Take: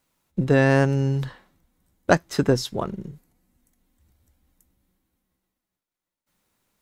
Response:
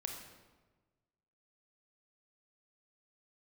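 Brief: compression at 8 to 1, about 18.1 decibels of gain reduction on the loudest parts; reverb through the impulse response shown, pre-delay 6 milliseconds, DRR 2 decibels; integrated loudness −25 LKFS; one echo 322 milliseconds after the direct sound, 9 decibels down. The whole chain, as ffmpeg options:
-filter_complex "[0:a]acompressor=threshold=-31dB:ratio=8,aecho=1:1:322:0.355,asplit=2[link_01][link_02];[1:a]atrim=start_sample=2205,adelay=6[link_03];[link_02][link_03]afir=irnorm=-1:irlink=0,volume=-1dB[link_04];[link_01][link_04]amix=inputs=2:normalize=0,volume=10dB"

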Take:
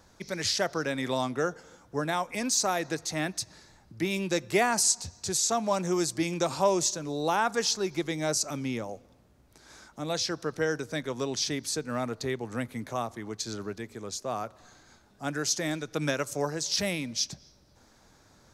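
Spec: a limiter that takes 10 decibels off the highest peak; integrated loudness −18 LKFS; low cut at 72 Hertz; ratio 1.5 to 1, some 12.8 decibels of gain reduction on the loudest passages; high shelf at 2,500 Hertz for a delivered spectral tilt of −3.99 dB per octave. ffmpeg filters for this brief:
ffmpeg -i in.wav -af "highpass=72,highshelf=frequency=2500:gain=-6.5,acompressor=threshold=-57dB:ratio=1.5,volume=27dB,alimiter=limit=-8dB:level=0:latency=1" out.wav

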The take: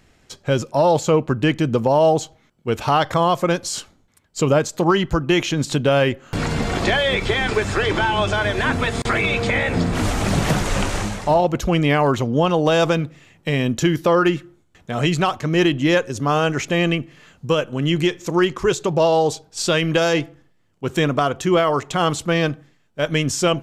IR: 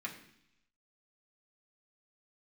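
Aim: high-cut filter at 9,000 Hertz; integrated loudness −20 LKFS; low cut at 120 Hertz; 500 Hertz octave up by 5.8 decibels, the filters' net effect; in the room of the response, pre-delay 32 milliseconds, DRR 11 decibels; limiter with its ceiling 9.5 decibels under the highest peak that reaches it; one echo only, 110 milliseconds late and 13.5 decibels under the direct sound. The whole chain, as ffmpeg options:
-filter_complex "[0:a]highpass=120,lowpass=9000,equalizer=frequency=500:width_type=o:gain=7,alimiter=limit=-10dB:level=0:latency=1,aecho=1:1:110:0.211,asplit=2[link_01][link_02];[1:a]atrim=start_sample=2205,adelay=32[link_03];[link_02][link_03]afir=irnorm=-1:irlink=0,volume=-12dB[link_04];[link_01][link_04]amix=inputs=2:normalize=0"

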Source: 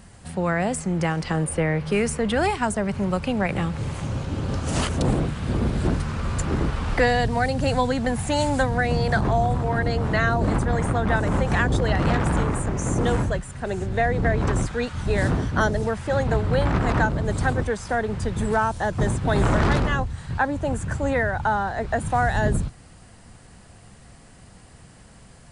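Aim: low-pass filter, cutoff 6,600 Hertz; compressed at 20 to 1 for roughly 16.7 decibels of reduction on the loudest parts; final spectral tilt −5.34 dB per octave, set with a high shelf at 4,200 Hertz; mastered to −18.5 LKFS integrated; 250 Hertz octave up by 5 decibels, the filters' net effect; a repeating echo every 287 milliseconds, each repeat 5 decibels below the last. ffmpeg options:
ffmpeg -i in.wav -af "lowpass=6600,equalizer=frequency=250:width_type=o:gain=6.5,highshelf=frequency=4200:gain=-5,acompressor=threshold=-31dB:ratio=20,aecho=1:1:287|574|861|1148|1435|1722|2009:0.562|0.315|0.176|0.0988|0.0553|0.031|0.0173,volume=16dB" out.wav

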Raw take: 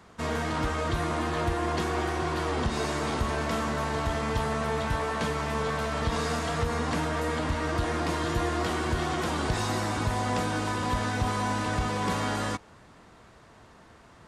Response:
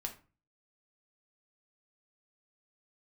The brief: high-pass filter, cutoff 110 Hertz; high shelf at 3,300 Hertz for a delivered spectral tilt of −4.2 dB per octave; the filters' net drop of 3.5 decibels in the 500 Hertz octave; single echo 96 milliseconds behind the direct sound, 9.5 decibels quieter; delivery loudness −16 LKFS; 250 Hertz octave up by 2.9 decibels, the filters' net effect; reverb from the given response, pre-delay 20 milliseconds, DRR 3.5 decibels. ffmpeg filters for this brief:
-filter_complex "[0:a]highpass=110,equalizer=frequency=250:width_type=o:gain=6,equalizer=frequency=500:width_type=o:gain=-7,highshelf=frequency=3300:gain=8.5,aecho=1:1:96:0.335,asplit=2[link_01][link_02];[1:a]atrim=start_sample=2205,adelay=20[link_03];[link_02][link_03]afir=irnorm=-1:irlink=0,volume=-2.5dB[link_04];[link_01][link_04]amix=inputs=2:normalize=0,volume=9.5dB"

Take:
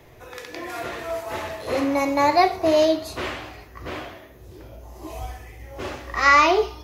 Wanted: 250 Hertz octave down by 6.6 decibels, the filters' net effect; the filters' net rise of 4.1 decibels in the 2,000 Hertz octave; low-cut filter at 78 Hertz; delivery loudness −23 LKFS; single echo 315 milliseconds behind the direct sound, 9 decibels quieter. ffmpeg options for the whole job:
ffmpeg -i in.wav -af "highpass=78,equalizer=frequency=250:width_type=o:gain=-9,equalizer=frequency=2000:width_type=o:gain=4.5,aecho=1:1:315:0.355,volume=-3.5dB" out.wav

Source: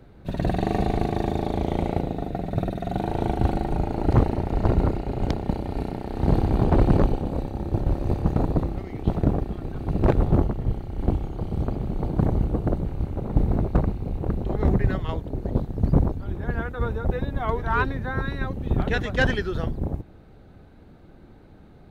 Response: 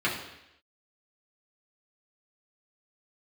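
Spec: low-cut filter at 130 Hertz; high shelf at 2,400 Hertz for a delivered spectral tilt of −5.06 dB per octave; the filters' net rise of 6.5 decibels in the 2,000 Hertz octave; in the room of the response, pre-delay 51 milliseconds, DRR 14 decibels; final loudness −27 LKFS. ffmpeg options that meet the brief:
-filter_complex "[0:a]highpass=130,equalizer=frequency=2000:width_type=o:gain=5,highshelf=frequency=2400:gain=8.5,asplit=2[link_01][link_02];[1:a]atrim=start_sample=2205,adelay=51[link_03];[link_02][link_03]afir=irnorm=-1:irlink=0,volume=-26dB[link_04];[link_01][link_04]amix=inputs=2:normalize=0,volume=-0.5dB"

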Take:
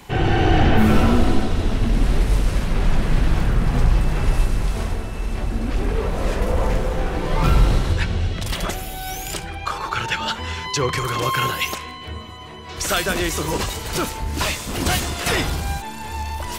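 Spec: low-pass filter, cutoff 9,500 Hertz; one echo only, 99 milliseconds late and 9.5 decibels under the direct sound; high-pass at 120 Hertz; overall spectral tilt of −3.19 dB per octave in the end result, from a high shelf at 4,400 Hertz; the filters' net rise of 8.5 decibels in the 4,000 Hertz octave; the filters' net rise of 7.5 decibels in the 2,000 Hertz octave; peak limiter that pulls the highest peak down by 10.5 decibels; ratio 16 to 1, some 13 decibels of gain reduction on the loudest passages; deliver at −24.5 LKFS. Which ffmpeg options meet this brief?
ffmpeg -i in.wav -af "highpass=120,lowpass=9500,equalizer=frequency=2000:width_type=o:gain=7,equalizer=frequency=4000:width_type=o:gain=5.5,highshelf=frequency=4400:gain=6,acompressor=threshold=-24dB:ratio=16,alimiter=limit=-21.5dB:level=0:latency=1,aecho=1:1:99:0.335,volume=5dB" out.wav

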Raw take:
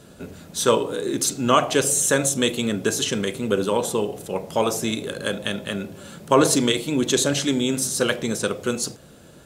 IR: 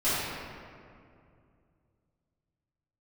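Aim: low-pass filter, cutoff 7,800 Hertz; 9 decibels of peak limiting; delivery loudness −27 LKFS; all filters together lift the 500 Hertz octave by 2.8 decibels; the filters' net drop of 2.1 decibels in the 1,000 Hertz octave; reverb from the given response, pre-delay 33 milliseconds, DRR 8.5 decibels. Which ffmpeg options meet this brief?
-filter_complex "[0:a]lowpass=7800,equalizer=frequency=500:width_type=o:gain=4,equalizer=frequency=1000:width_type=o:gain=-3.5,alimiter=limit=-11.5dB:level=0:latency=1,asplit=2[link_01][link_02];[1:a]atrim=start_sample=2205,adelay=33[link_03];[link_02][link_03]afir=irnorm=-1:irlink=0,volume=-22dB[link_04];[link_01][link_04]amix=inputs=2:normalize=0,volume=-4dB"

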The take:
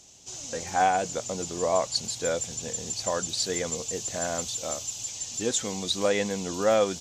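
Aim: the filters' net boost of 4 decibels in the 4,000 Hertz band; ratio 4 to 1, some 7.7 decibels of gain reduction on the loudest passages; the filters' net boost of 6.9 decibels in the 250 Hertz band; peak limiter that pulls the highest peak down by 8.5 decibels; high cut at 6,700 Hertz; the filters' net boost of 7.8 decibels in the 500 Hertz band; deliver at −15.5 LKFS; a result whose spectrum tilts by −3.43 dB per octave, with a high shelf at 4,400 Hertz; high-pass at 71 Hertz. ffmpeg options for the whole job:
ffmpeg -i in.wav -af "highpass=71,lowpass=6700,equalizer=frequency=250:width_type=o:gain=7,equalizer=frequency=500:width_type=o:gain=7.5,equalizer=frequency=4000:width_type=o:gain=8,highshelf=frequency=4400:gain=-5.5,acompressor=threshold=-20dB:ratio=4,volume=14.5dB,alimiter=limit=-5dB:level=0:latency=1" out.wav

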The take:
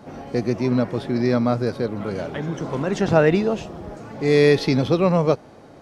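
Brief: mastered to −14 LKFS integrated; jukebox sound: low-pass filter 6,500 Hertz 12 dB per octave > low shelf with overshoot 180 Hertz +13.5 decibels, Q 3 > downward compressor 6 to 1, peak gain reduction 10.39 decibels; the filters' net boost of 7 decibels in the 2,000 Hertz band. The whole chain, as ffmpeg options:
ffmpeg -i in.wav -af "lowpass=6500,lowshelf=frequency=180:width_type=q:width=3:gain=13.5,equalizer=frequency=2000:width_type=o:gain=8.5,acompressor=threshold=-13dB:ratio=6,volume=4dB" out.wav

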